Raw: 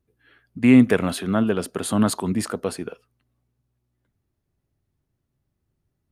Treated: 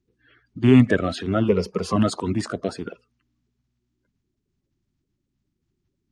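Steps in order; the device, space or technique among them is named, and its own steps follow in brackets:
clip after many re-uploads (low-pass filter 7,200 Hz 24 dB per octave; spectral magnitudes quantised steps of 30 dB)
0:01.48–0:01.96: EQ curve with evenly spaced ripples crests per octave 0.83, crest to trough 15 dB

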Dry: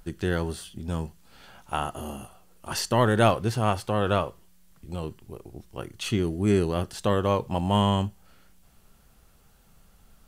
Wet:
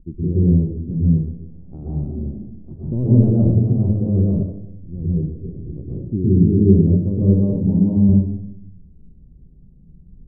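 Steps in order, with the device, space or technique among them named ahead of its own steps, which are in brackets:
0:07.54–0:07.97: high-pass filter 150 Hz
next room (low-pass filter 320 Hz 24 dB per octave; convolution reverb RT60 0.85 s, pre-delay 115 ms, DRR −7.5 dB)
level +4 dB

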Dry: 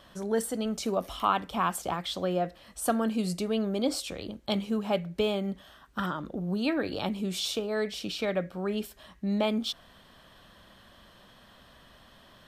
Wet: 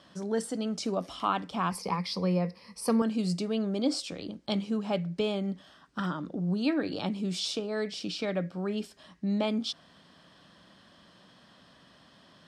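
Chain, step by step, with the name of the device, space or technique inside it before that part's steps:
car door speaker (loudspeaker in its box 100–9,400 Hz, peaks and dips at 170 Hz +7 dB, 290 Hz +6 dB, 5,000 Hz +7 dB)
0:01.71–0:03.02: EQ curve with evenly spaced ripples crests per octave 0.87, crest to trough 15 dB
level −3 dB

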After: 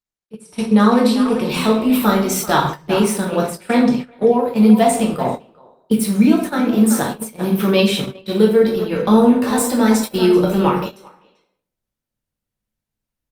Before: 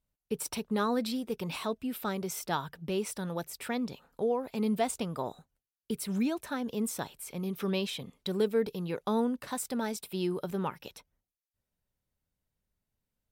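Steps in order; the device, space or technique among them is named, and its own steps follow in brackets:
0:03.27–0:04.32: low-pass filter 11,000 Hz 12 dB per octave
speakerphone in a meeting room (convolution reverb RT60 0.70 s, pre-delay 5 ms, DRR −2 dB; far-end echo of a speakerphone 390 ms, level −9 dB; automatic gain control gain up to 15.5 dB; noise gate −21 dBFS, range −17 dB; Opus 32 kbit/s 48,000 Hz)

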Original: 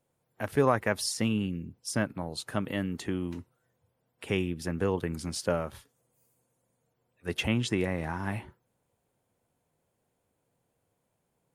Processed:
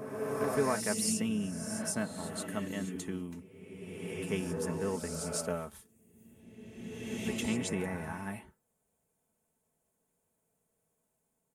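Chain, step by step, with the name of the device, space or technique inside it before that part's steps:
high shelf with overshoot 5,800 Hz +7 dB, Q 1.5
comb filter 4.6 ms, depth 53%
reverse reverb (reversed playback; convolution reverb RT60 2.1 s, pre-delay 118 ms, DRR 2 dB; reversed playback)
level −7.5 dB

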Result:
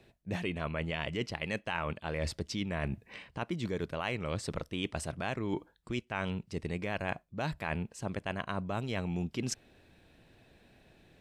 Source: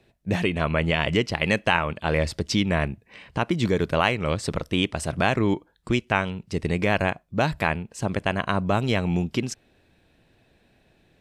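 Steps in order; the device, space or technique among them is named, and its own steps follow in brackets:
compression on the reversed sound (reversed playback; downward compressor 6 to 1, threshold −32 dBFS, peak gain reduction 16 dB; reversed playback)

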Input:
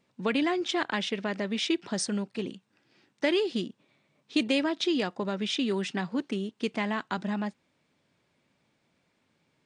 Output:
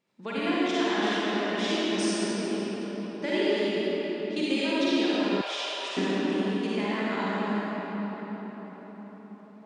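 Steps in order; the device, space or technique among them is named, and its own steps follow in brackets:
cathedral (convolution reverb RT60 5.6 s, pre-delay 38 ms, DRR −10.5 dB)
0:05.41–0:05.97: high-pass filter 600 Hz 24 dB per octave
low-shelf EQ 120 Hz −11 dB
level −7.5 dB

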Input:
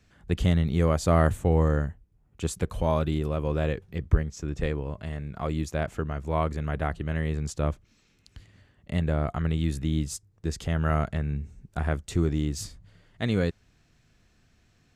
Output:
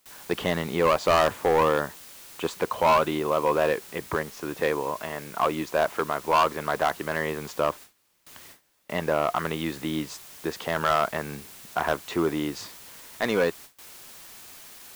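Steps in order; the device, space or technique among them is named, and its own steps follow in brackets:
drive-through speaker (band-pass filter 410–3,200 Hz; parametric band 1,000 Hz +9 dB 0.52 octaves; hard clipping −23.5 dBFS, distortion −7 dB; white noise bed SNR 19 dB)
0:07.60–0:09.36: high-shelf EQ 3,200 Hz −2.5 dB
noise gate with hold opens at −43 dBFS
level +8.5 dB

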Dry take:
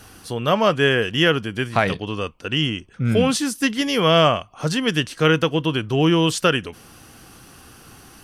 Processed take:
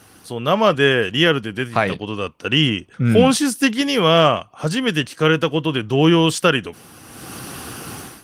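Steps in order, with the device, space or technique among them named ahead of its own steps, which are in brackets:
0:02.38–0:03.93: dynamic equaliser 780 Hz, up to +3 dB, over −43 dBFS, Q 7.6
video call (high-pass filter 100 Hz 12 dB per octave; automatic gain control gain up to 15.5 dB; level −1 dB; Opus 24 kbit/s 48,000 Hz)

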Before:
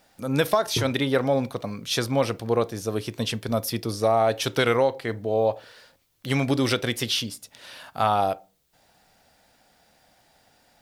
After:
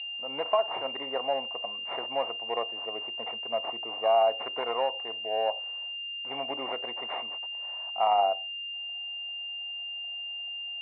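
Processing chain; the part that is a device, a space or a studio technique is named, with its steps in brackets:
toy sound module (linearly interpolated sample-rate reduction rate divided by 8×; switching amplifier with a slow clock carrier 2,800 Hz; loudspeaker in its box 650–3,800 Hz, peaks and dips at 710 Hz +9 dB, 1,000 Hz +5 dB, 1,500 Hz −7 dB, 2,200 Hz +6 dB, 3,600 Hz +4 dB)
level −5 dB

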